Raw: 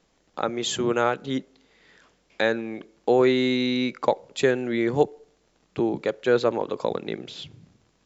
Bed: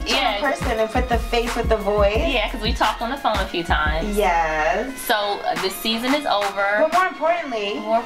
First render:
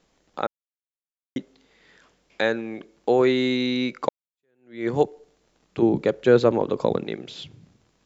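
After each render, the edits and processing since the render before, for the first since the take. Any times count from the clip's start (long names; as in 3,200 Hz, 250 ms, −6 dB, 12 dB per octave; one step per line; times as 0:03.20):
0:00.47–0:01.36: silence
0:04.09–0:04.87: fade in exponential
0:05.82–0:07.05: low-shelf EQ 380 Hz +10 dB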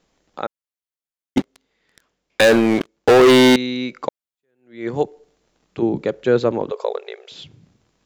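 0:01.37–0:03.56: leveller curve on the samples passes 5
0:06.71–0:07.32: linear-phase brick-wall high-pass 380 Hz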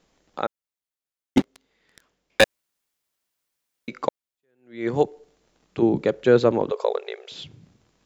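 0:02.44–0:03.88: fill with room tone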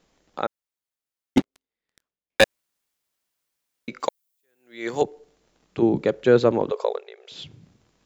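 0:01.39–0:02.41: power curve on the samples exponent 1.4
0:04.00–0:05.02: RIAA equalisation recording
0:06.82–0:07.42: duck −10.5 dB, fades 0.28 s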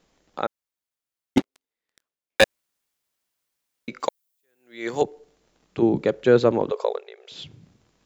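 0:01.38–0:02.42: bass and treble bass −7 dB, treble 0 dB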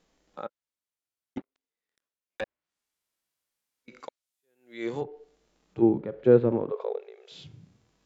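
treble cut that deepens with the level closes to 1,800 Hz, closed at −19 dBFS
harmonic and percussive parts rebalanced percussive −17 dB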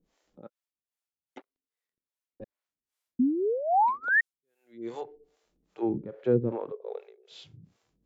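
0:03.19–0:04.21: sound drawn into the spectrogram rise 240–1,900 Hz −20 dBFS
two-band tremolo in antiphase 2.5 Hz, depth 100%, crossover 410 Hz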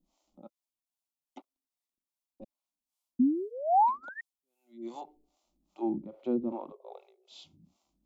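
phaser with its sweep stopped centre 450 Hz, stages 6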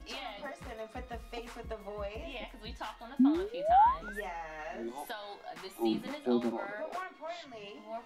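mix in bed −22.5 dB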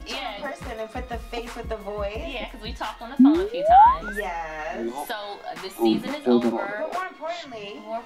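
level +10.5 dB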